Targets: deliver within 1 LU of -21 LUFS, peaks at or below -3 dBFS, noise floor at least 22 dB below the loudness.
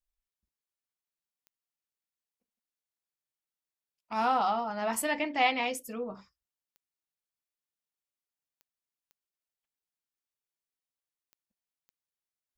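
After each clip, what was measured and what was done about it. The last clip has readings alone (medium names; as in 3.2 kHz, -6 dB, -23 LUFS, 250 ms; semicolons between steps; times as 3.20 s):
clicks found 6; loudness -30.0 LUFS; peak level -13.5 dBFS; loudness target -21.0 LUFS
-> de-click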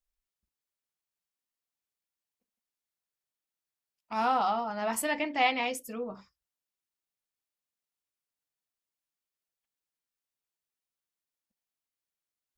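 clicks found 0; loudness -30.0 LUFS; peak level -13.5 dBFS; loudness target -21.0 LUFS
-> trim +9 dB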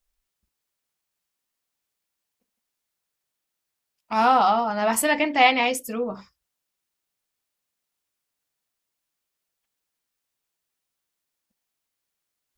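loudness -21.0 LUFS; peak level -4.5 dBFS; noise floor -83 dBFS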